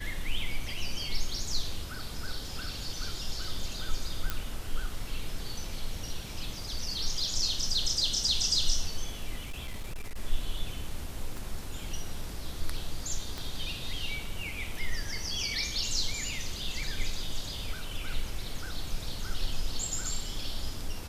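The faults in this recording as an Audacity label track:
4.300000	4.300000	pop -14 dBFS
9.400000	10.190000	clipped -32 dBFS
11.370000	11.370000	pop
13.380000	13.380000	pop

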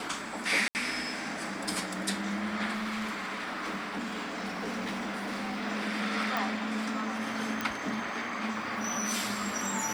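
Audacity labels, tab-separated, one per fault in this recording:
0.680000	0.750000	gap 69 ms
2.720000	5.620000	clipped -30.5 dBFS
6.370000	6.370000	pop
7.610000	7.610000	pop

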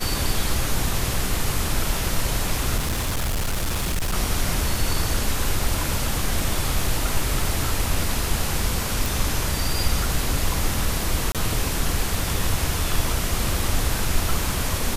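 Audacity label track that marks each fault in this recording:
2.770000	4.140000	clipped -20 dBFS
9.060000	9.060000	pop
11.320000	11.350000	gap 27 ms

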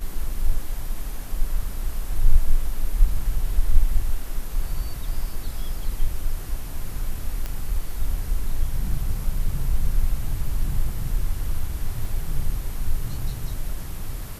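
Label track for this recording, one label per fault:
7.460000	7.460000	pop -15 dBFS
12.050000	12.050000	gap 2.1 ms

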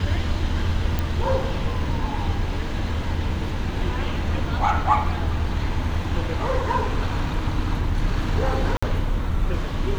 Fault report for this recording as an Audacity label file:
0.990000	0.990000	pop -10 dBFS
8.770000	8.820000	gap 55 ms

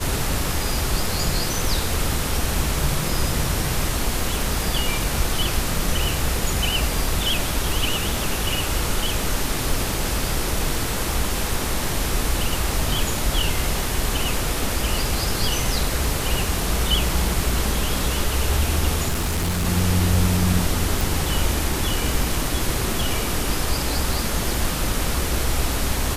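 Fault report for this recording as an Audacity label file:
19.080000	19.660000	clipped -18.5 dBFS
21.010000	21.010000	pop

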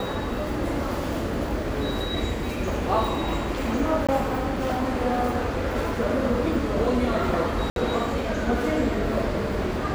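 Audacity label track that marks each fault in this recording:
4.070000	4.090000	gap 16 ms
7.700000	7.760000	gap 62 ms

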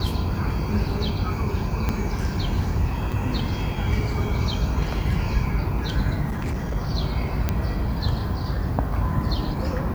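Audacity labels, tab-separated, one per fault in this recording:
1.890000	1.890000	pop -11 dBFS
3.120000	3.130000	gap 5.5 ms
6.280000	6.760000	clipped -23 dBFS
7.490000	7.490000	pop -9 dBFS

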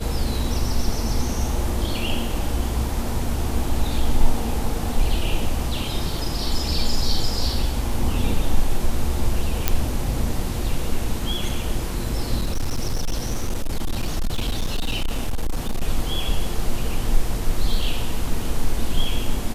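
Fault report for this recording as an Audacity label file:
9.680000	9.680000	pop -1 dBFS
12.400000	15.830000	clipped -18 dBFS

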